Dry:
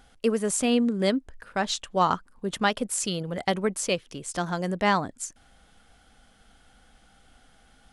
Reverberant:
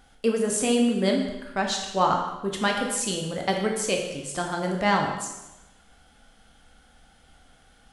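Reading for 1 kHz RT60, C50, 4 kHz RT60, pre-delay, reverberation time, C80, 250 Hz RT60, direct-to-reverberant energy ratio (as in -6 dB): 1.0 s, 4.5 dB, 0.90 s, 6 ms, 1.0 s, 6.5 dB, 1.1 s, 1.0 dB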